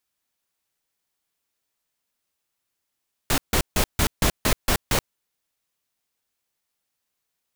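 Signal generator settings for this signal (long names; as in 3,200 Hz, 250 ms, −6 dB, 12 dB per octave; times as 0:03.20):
noise bursts pink, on 0.08 s, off 0.15 s, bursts 8, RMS −19.5 dBFS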